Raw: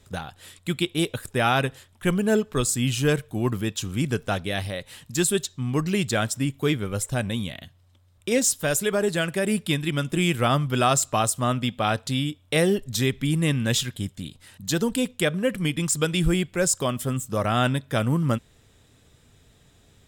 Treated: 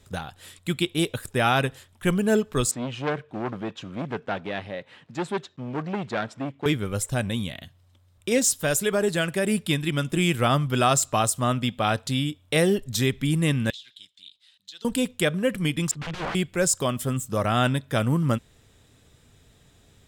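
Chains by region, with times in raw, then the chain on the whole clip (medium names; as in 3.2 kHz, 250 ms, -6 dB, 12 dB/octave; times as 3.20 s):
2.71–6.66 s: block-companded coder 5-bit + band-pass 180–2300 Hz + transformer saturation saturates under 1.3 kHz
13.70–14.85 s: band-pass filter 3.7 kHz, Q 3.8 + compression 12:1, threshold -37 dBFS
15.91–16.35 s: integer overflow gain 23.5 dB + low-pass 2.6 kHz + three bands expanded up and down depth 100%
whole clip: none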